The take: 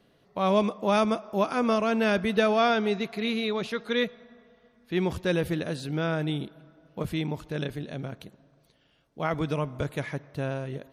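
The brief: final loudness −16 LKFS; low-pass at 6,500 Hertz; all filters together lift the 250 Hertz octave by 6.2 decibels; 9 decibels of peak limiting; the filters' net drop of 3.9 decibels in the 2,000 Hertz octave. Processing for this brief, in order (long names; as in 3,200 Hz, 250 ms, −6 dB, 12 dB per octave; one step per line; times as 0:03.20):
low-pass filter 6,500 Hz
parametric band 250 Hz +8 dB
parametric band 2,000 Hz −5.5 dB
level +12 dB
brickwall limiter −5.5 dBFS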